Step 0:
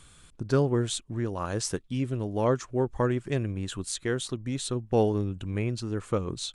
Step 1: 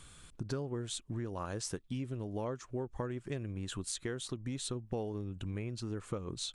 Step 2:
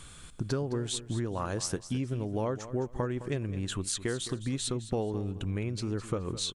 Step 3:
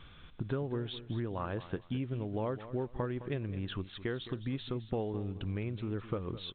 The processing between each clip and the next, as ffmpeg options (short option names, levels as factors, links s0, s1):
-af "acompressor=threshold=0.02:ratio=6,volume=0.891"
-af "aecho=1:1:212|424|636:0.2|0.0459|0.0106,volume=2"
-af "volume=0.668" -ar 8000 -c:a pcm_alaw